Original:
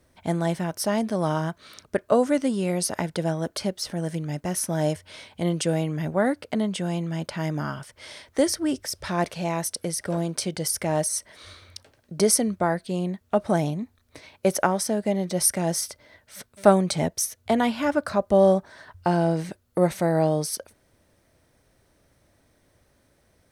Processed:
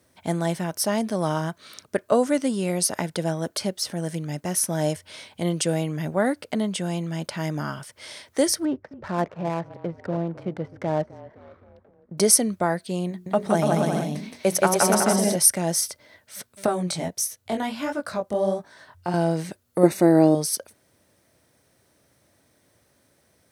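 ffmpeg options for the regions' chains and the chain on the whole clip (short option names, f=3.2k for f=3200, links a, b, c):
-filter_complex "[0:a]asettb=1/sr,asplit=3[a][b][c];[a]atrim=end=8.654[d];[b]atrim=start=8.65:end=12.18,asetpts=PTS-STARTPTS,afade=t=in:d=0.004:c=qsin,afade=t=out:st=3.526:d=0.004:c=qsin,lowpass=1.6k,asplit=6[e][f][g][h][i][j];[f]adelay=258,afreqshift=-33,volume=-18dB[k];[g]adelay=516,afreqshift=-66,volume=-23dB[l];[h]adelay=774,afreqshift=-99,volume=-28.1dB[m];[i]adelay=1032,afreqshift=-132,volume=-33.1dB[n];[j]adelay=1290,afreqshift=-165,volume=-38.1dB[o];[e][k][l][m][n][o]amix=inputs=6:normalize=0,atrim=end_sample=155673,adynamicsmooth=sensitivity=7:basefreq=1k[p];[c]atrim=start=12.176[q];[d][p]acrossfade=d=0.004:c1=hsin:c2=qsin[r];[r][q]acrossfade=d=0.004:c1=qsin:c2=hsin,asettb=1/sr,asplit=3[s][t][u];[s]atrim=end=13.094[v];[t]atrim=start=13.09:end=15.36,asetpts=PTS-STARTPTS,afade=t=in:d=0.004:c=qsin,afade=t=out:st=2.266:d=0.004:c=qsin,bandreject=f=60:t=h:w=6,bandreject=f=120:t=h:w=6,bandreject=f=180:t=h:w=6,bandreject=f=240:t=h:w=6,bandreject=f=300:t=h:w=6,bandreject=f=360:t=h:w=6,bandreject=f=420:t=h:w=6,aecho=1:1:170|289|372.3|430.6|471.4:0.794|0.631|0.501|0.398|0.316,atrim=end_sample=100107[w];[u]atrim=start=15.356[x];[v][w]acrossfade=d=0.004:c1=hsin:c2=qsin[y];[y][x]acrossfade=d=0.004:c1=qsin:c2=hsin,asettb=1/sr,asplit=3[z][aa][ab];[z]atrim=end=16.664[ac];[aa]atrim=start=16.66:end=19.14,asetpts=PTS-STARTPTS,afade=t=in:d=0.004:c=qsin,afade=t=out:st=2.476:d=0.004:c=qsin,acompressor=threshold=-22dB:ratio=1.5:attack=3.2:release=140:knee=1:detection=peak,flanger=delay=17.5:depth=6.3:speed=1.5[ad];[ab]atrim=start=19.136[ae];[ac][ad]acrossfade=d=0.004:c1=hsin:c2=qsin[af];[af][ae]acrossfade=d=0.004:c1=qsin:c2=hsin,asettb=1/sr,asplit=3[ag][ah][ai];[ag]atrim=end=19.834[aj];[ah]atrim=start=19.83:end=20.35,asetpts=PTS-STARTPTS,afade=t=in:d=0.004:c=qsin,afade=t=out:st=0.516:d=0.004:c=qsin,asuperstop=centerf=3200:order=20:qfactor=7.7,equalizer=f=330:t=o:w=0.77:g=12[ak];[ai]atrim=start=20.346[al];[aj][ak]acrossfade=d=0.004:c1=hsin:c2=qsin[am];[am][al]acrossfade=d=0.004:c1=qsin:c2=hsin,highpass=98,highshelf=f=4.6k:g=5.5"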